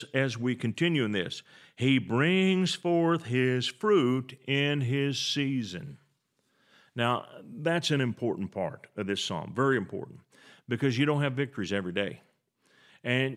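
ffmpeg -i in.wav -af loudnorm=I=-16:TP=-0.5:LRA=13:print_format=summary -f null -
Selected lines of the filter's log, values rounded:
Input Integrated:    -28.9 LUFS
Input True Peak:     -10.6 dBTP
Input LRA:             5.3 LU
Input Threshold:     -39.6 LUFS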